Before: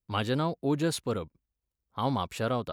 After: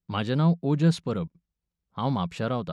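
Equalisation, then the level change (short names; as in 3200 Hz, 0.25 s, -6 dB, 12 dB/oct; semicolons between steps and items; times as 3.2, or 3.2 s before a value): LPF 6200 Hz 12 dB/oct; bell 170 Hz +14.5 dB 0.42 oct; 0.0 dB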